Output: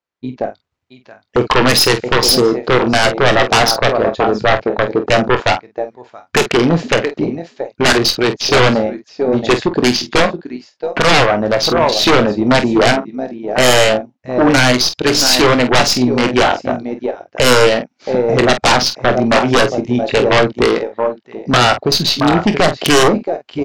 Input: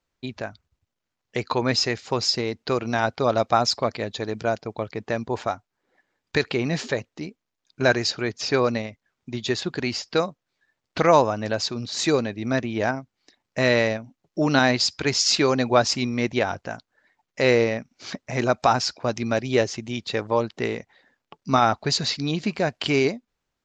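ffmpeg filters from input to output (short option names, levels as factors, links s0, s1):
-filter_complex "[0:a]highpass=f=340:p=1,asplit=2[s0][s1];[s1]aecho=0:1:675:0.251[s2];[s0][s2]amix=inputs=2:normalize=0,afwtdn=0.0316,aeval=exprs='0.708*(cos(1*acos(clip(val(0)/0.708,-1,1)))-cos(1*PI/2))+0.0355*(cos(8*acos(clip(val(0)/0.708,-1,1)))-cos(8*PI/2))':c=same,lowpass=f=3200:p=1,dynaudnorm=f=250:g=5:m=3.76,aeval=exprs='0.944*sin(PI/2*5.62*val(0)/0.944)':c=same,asplit=2[s3][s4];[s4]aecho=0:1:24|48:0.266|0.282[s5];[s3][s5]amix=inputs=2:normalize=0,volume=0.501"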